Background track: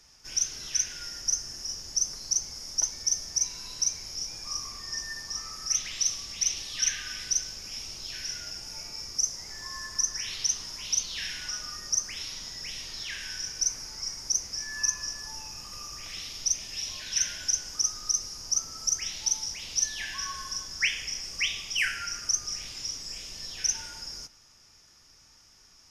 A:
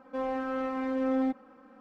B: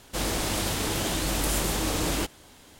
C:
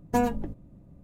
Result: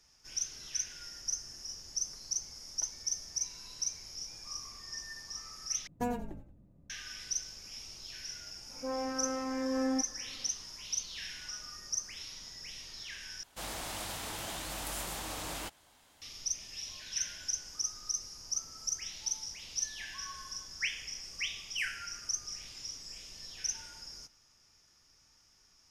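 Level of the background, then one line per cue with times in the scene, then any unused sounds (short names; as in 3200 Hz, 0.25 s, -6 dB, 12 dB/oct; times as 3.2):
background track -8 dB
5.87 replace with C -10 dB + frequency-shifting echo 89 ms, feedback 42%, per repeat -35 Hz, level -13.5 dB
8.69 add A -4 dB + dispersion highs, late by 0.139 s, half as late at 2600 Hz
13.43 replace with B -10.5 dB + resonant low shelf 550 Hz -6 dB, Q 1.5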